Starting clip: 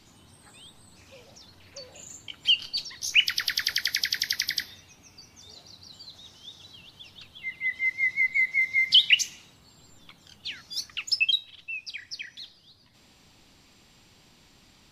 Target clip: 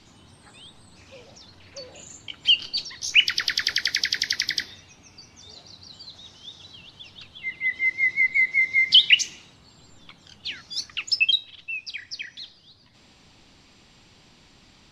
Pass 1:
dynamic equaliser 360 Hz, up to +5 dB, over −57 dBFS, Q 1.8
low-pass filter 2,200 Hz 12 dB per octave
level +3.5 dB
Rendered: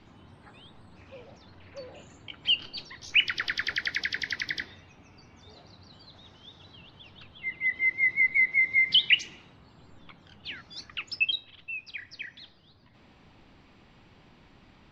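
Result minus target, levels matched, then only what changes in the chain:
8,000 Hz band −12.0 dB
change: low-pass filter 6,800 Hz 12 dB per octave

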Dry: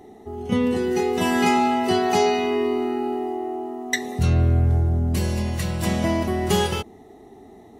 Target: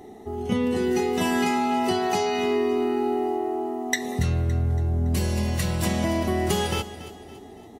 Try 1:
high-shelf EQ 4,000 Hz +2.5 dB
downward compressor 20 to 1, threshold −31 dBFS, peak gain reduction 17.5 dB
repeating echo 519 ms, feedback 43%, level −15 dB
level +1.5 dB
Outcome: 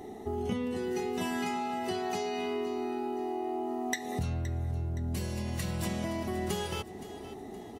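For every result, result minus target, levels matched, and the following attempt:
echo 237 ms late; downward compressor: peak gain reduction +9.5 dB
high-shelf EQ 4,000 Hz +2.5 dB
downward compressor 20 to 1, threshold −31 dBFS, peak gain reduction 17.5 dB
repeating echo 282 ms, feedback 43%, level −15 dB
level +1.5 dB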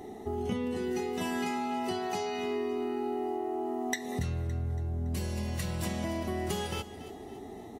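downward compressor: peak gain reduction +9.5 dB
high-shelf EQ 4,000 Hz +2.5 dB
downward compressor 20 to 1, threshold −21 dBFS, peak gain reduction 8 dB
repeating echo 282 ms, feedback 43%, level −15 dB
level +1.5 dB

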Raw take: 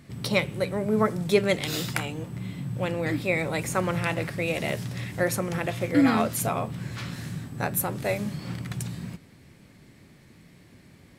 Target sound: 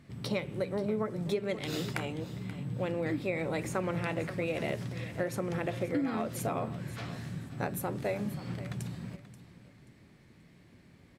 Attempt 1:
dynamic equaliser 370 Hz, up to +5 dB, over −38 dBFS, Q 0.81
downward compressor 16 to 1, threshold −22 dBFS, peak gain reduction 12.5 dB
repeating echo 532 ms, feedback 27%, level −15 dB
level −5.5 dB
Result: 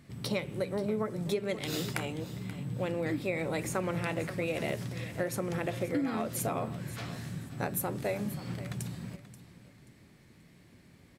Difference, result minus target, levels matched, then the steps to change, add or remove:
8,000 Hz band +5.0 dB
add after downward compressor: high-shelf EQ 6,500 Hz −8.5 dB

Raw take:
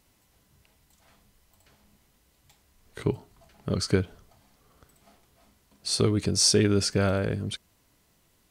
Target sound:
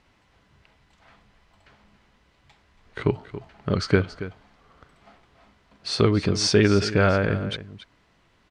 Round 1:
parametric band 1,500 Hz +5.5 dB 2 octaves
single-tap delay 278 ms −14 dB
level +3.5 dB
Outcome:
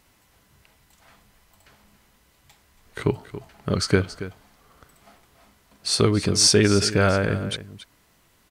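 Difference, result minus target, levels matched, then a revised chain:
4,000 Hz band +3.5 dB
low-pass filter 3,900 Hz 12 dB per octave
parametric band 1,500 Hz +5.5 dB 2 octaves
single-tap delay 278 ms −14 dB
level +3.5 dB

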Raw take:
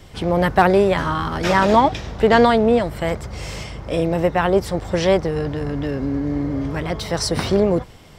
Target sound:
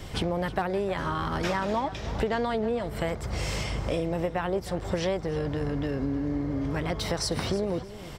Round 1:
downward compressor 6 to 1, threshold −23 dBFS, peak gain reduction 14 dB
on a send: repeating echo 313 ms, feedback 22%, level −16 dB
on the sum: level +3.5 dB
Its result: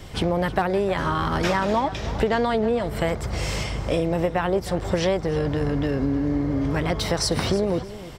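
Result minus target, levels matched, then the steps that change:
downward compressor: peak gain reduction −6 dB
change: downward compressor 6 to 1, threshold −30 dBFS, peak gain reduction 20 dB

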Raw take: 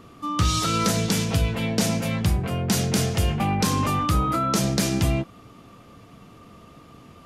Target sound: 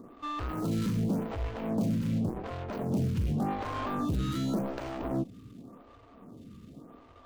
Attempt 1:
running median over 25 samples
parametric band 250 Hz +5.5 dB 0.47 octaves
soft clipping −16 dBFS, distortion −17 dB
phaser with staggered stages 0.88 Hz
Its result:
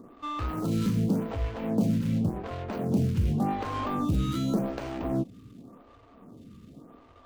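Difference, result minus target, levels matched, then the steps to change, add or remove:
soft clipping: distortion −8 dB
change: soft clipping −23.5 dBFS, distortion −9 dB

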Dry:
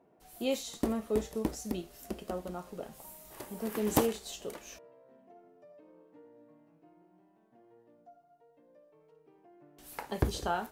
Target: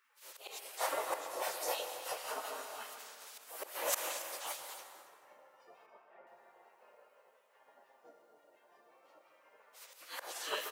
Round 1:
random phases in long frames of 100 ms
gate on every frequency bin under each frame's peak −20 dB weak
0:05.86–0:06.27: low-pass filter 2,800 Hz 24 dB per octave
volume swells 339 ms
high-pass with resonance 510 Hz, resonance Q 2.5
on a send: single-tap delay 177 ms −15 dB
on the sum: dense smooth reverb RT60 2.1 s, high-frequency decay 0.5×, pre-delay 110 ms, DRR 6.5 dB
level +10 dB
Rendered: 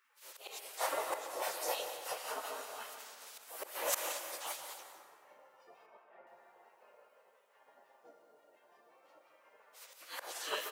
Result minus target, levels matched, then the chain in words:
echo 99 ms early
random phases in long frames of 100 ms
gate on every frequency bin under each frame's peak −20 dB weak
0:05.86–0:06.27: low-pass filter 2,800 Hz 24 dB per octave
volume swells 339 ms
high-pass with resonance 510 Hz, resonance Q 2.5
on a send: single-tap delay 276 ms −15 dB
on the sum: dense smooth reverb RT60 2.1 s, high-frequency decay 0.5×, pre-delay 110 ms, DRR 6.5 dB
level +10 dB

